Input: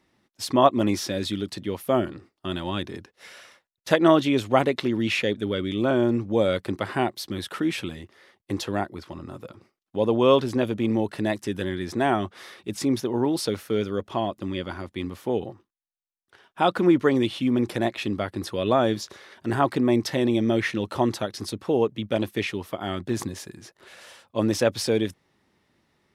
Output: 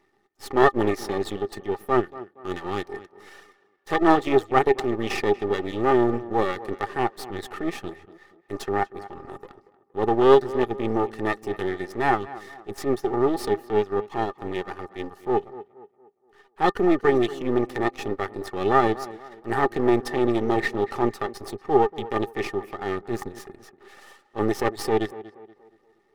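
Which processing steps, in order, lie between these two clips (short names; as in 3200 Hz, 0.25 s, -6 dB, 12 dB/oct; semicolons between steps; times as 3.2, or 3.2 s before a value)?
reverb removal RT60 0.7 s; transient shaper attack -9 dB, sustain -5 dB; half-wave rectifier; small resonant body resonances 400/810/1200/1800 Hz, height 17 dB, ringing for 55 ms; on a send: tape echo 0.236 s, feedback 43%, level -15.5 dB, low-pass 2300 Hz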